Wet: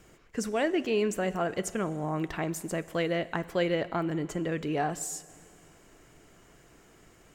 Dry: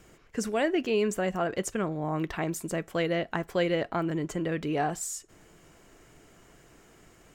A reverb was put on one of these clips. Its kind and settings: Schroeder reverb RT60 2.1 s, combs from 31 ms, DRR 16.5 dB; trim -1 dB

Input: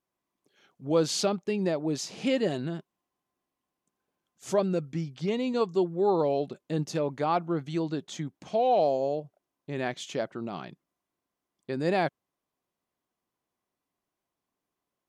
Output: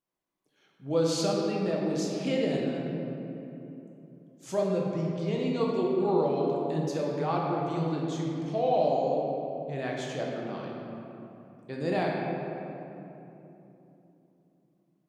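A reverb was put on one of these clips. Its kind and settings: simulated room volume 150 m³, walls hard, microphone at 0.59 m; trim -5.5 dB

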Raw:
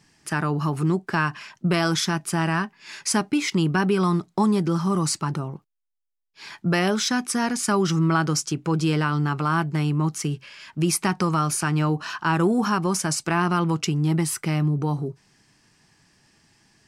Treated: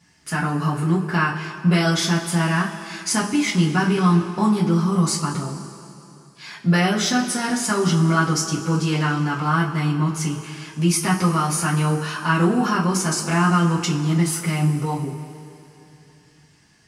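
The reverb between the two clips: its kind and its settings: two-slope reverb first 0.24 s, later 2.9 s, from -18 dB, DRR -6.5 dB; trim -4.5 dB

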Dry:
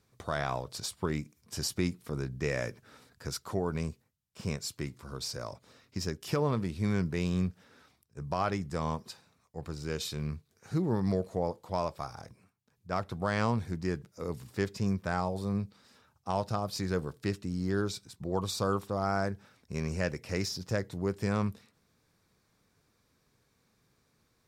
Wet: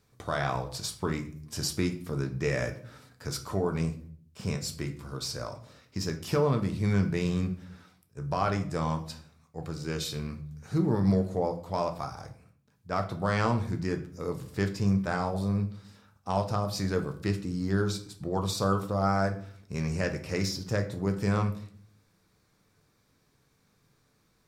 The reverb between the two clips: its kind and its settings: simulated room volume 60 m³, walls mixed, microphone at 0.36 m; trim +1.5 dB

